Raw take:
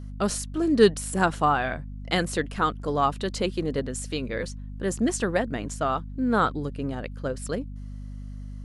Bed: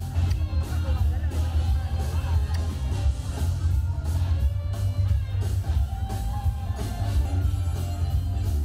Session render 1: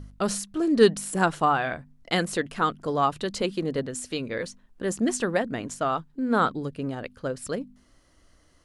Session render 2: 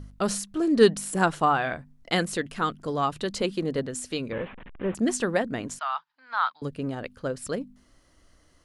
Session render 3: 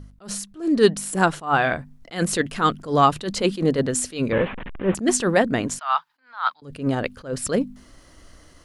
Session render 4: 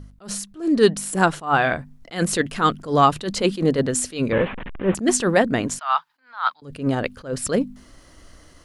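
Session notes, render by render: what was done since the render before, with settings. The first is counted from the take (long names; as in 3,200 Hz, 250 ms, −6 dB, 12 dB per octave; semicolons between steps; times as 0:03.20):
hum removal 50 Hz, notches 5
0:02.23–0:03.15: parametric band 760 Hz −3.5 dB 2.2 octaves; 0:04.32–0:04.95: linear delta modulator 16 kbit/s, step −38 dBFS; 0:05.79–0:06.62: elliptic band-pass filter 890–5,100 Hz
automatic gain control gain up to 11.5 dB; level that may rise only so fast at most 190 dB per second
level +1 dB; brickwall limiter −3 dBFS, peak gain reduction 1 dB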